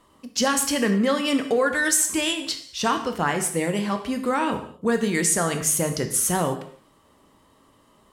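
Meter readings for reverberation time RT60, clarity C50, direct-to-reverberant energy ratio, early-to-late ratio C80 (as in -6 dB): no single decay rate, 9.5 dB, 6.0 dB, 12.5 dB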